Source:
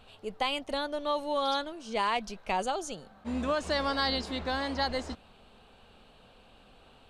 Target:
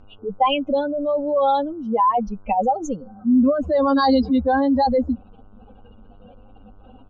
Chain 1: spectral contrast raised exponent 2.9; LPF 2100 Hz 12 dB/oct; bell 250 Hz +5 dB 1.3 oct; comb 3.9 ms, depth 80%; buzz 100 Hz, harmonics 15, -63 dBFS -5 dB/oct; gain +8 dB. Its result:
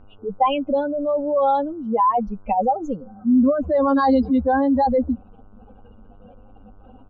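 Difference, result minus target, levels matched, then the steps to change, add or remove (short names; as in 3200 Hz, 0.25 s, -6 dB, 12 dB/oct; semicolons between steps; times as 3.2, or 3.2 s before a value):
8000 Hz band -16.0 dB
change: LPF 5700 Hz 12 dB/oct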